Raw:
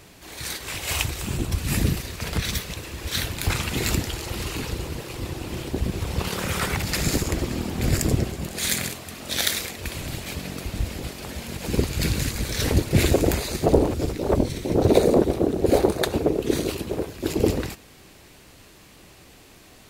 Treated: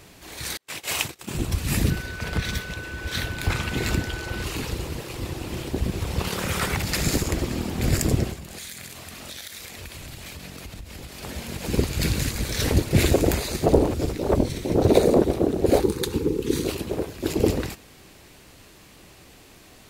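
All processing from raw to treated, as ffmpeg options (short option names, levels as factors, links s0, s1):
-filter_complex "[0:a]asettb=1/sr,asplit=3[s0][s1][s2];[s0]atrim=end=0.574[s3];[s1]atrim=start=0.57:end=1.35,asetpts=PTS-STARTPTS,afade=t=in:d=0.004:c=qsin,afade=t=out:st=0.776:d=0.004:c=qsin,highpass=170,agate=range=0.0126:threshold=0.0224:ratio=16:release=100:detection=peak[s4];[s2]atrim=start=1.346[s5];[s3][s4]acrossfade=d=0.004:c1=hsin:c2=qsin[s6];[s6][s5]acrossfade=d=0.004:c1=qsin:c2=hsin,asettb=1/sr,asplit=3[s7][s8][s9];[s7]atrim=end=1.904[s10];[s8]atrim=start=1.9:end=4.44,asetpts=PTS-STARTPTS,afade=t=in:d=0.004:c=qsin,afade=t=out:st=2.536:d=0.004:c=qsin,highshelf=f=5100:g=-9,aeval=exprs='val(0)+0.0158*sin(2*PI*1500*n/s)':c=same[s11];[s9]atrim=start=4.436[s12];[s10][s11]acrossfade=d=0.004:c1=hsin:c2=qsin[s13];[s13][s12]acrossfade=d=0.004:c1=qsin:c2=hsin,asettb=1/sr,asplit=3[s14][s15][s16];[s14]atrim=end=8.334[s17];[s15]atrim=start=8.33:end=11.23,asetpts=PTS-STARTPTS,afade=t=in:d=0.004:c=qsin,afade=t=out:st=2.896:d=0.004:c=qsin,equalizer=f=330:w=0.51:g=-4.5,acompressor=threshold=0.02:ratio=10:attack=3.2:release=140:knee=1:detection=peak[s18];[s16]atrim=start=11.226[s19];[s17][s18]acrossfade=d=0.004:c1=hsin:c2=qsin[s20];[s20][s19]acrossfade=d=0.004:c1=qsin:c2=hsin,asettb=1/sr,asplit=3[s21][s22][s23];[s21]atrim=end=15.804[s24];[s22]atrim=start=15.8:end=16.64,asetpts=PTS-STARTPTS,afade=t=in:d=0.004:c=qsin,afade=t=out:st=0.836:d=0.004:c=qsin,acrossover=split=490|3000[s25][s26][s27];[s26]acompressor=threshold=0.0158:ratio=2.5:attack=3.2:release=140:knee=2.83:detection=peak[s28];[s25][s28][s27]amix=inputs=3:normalize=0,asuperstop=centerf=650:order=8:qfactor=2.1[s29];[s23]atrim=start=16.636[s30];[s24][s29]acrossfade=d=0.004:c1=hsin:c2=qsin[s31];[s31][s30]acrossfade=d=0.004:c1=qsin:c2=hsin"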